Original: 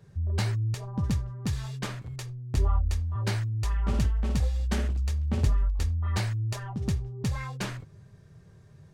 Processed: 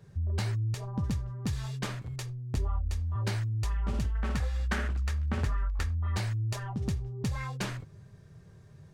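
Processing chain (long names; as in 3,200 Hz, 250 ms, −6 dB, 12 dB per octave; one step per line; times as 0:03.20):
0:04.15–0:05.95: parametric band 1,500 Hz +12.5 dB 1.4 octaves
downward compressor 3 to 1, threshold −28 dBFS, peak gain reduction 7.5 dB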